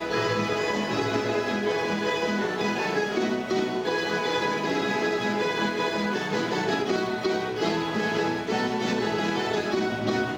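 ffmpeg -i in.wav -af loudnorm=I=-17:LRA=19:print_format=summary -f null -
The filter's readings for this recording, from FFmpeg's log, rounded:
Input Integrated:    -26.2 LUFS
Input True Peak:     -11.6 dBTP
Input LRA:             0.5 LU
Input Threshold:     -36.2 LUFS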